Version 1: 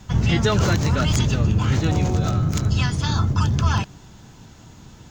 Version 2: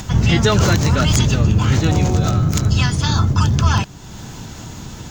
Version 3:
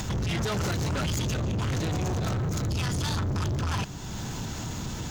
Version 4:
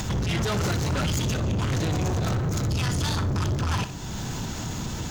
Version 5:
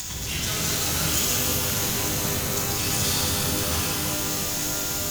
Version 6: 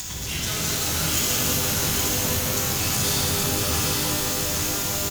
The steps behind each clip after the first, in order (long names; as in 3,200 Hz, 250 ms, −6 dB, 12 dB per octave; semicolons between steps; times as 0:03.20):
high-shelf EQ 5,900 Hz +5 dB; in parallel at +2.5 dB: upward compression, threshold −22 dBFS; on the sum: level −3 dB
brickwall limiter −11 dBFS, peak gain reduction 8.5 dB; soft clipping −26 dBFS, distortion −7 dB
flutter between parallel walls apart 10.6 metres, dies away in 0.29 s; level +2.5 dB
first-order pre-emphasis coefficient 0.9; reverb with rising layers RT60 3.9 s, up +12 semitones, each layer −2 dB, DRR −5.5 dB; level +5.5 dB
single-tap delay 820 ms −4 dB